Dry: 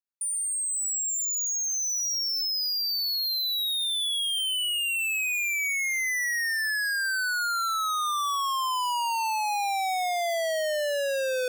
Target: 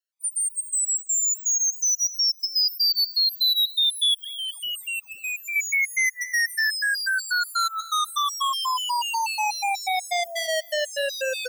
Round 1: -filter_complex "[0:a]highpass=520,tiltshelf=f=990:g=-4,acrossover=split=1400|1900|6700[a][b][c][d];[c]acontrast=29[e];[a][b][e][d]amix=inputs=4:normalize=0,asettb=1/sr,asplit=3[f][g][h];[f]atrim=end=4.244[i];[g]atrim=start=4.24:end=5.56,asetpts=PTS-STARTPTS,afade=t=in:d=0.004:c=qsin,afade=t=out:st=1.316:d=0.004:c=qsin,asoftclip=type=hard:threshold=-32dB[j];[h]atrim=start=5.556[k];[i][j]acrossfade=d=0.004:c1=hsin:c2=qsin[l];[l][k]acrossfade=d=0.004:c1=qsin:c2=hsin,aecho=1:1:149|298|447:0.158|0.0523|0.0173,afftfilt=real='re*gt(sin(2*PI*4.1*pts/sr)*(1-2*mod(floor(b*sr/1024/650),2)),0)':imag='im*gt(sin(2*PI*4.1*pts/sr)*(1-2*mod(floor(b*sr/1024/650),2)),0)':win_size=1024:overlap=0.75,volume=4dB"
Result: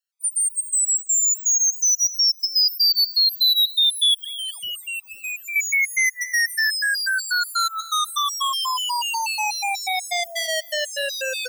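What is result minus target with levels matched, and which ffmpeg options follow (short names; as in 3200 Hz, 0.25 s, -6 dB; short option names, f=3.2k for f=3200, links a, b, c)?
1000 Hz band -3.0 dB
-filter_complex "[0:a]highpass=520,acrossover=split=1400|1900|6700[a][b][c][d];[c]acontrast=29[e];[a][b][e][d]amix=inputs=4:normalize=0,asettb=1/sr,asplit=3[f][g][h];[f]atrim=end=4.244[i];[g]atrim=start=4.24:end=5.56,asetpts=PTS-STARTPTS,afade=t=in:d=0.004:c=qsin,afade=t=out:st=1.316:d=0.004:c=qsin,asoftclip=type=hard:threshold=-32dB[j];[h]atrim=start=5.556[k];[i][j]acrossfade=d=0.004:c1=hsin:c2=qsin[l];[l][k]acrossfade=d=0.004:c1=qsin:c2=hsin,aecho=1:1:149|298|447:0.158|0.0523|0.0173,afftfilt=real='re*gt(sin(2*PI*4.1*pts/sr)*(1-2*mod(floor(b*sr/1024/650),2)),0)':imag='im*gt(sin(2*PI*4.1*pts/sr)*(1-2*mod(floor(b*sr/1024/650),2)),0)':win_size=1024:overlap=0.75,volume=4dB"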